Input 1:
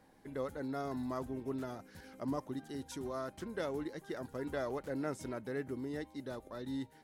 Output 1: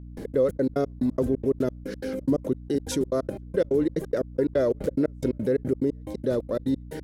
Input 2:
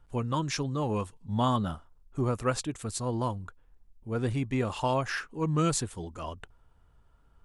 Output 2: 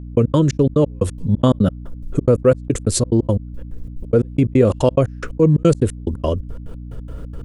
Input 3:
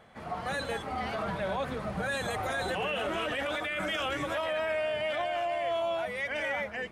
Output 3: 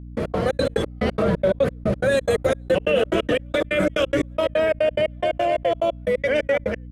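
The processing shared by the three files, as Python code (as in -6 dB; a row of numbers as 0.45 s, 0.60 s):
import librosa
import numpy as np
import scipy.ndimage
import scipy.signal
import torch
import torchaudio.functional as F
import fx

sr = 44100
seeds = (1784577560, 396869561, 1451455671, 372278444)

y = fx.step_gate(x, sr, bpm=178, pattern='..x.xx.x.x', floor_db=-60.0, edge_ms=4.5)
y = fx.low_shelf_res(y, sr, hz=650.0, db=7.0, q=3.0)
y = fx.add_hum(y, sr, base_hz=60, snr_db=34)
y = fx.env_flatten(y, sr, amount_pct=50)
y = y * librosa.db_to_amplitude(4.5)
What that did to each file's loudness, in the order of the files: +14.0 LU, +13.0 LU, +10.0 LU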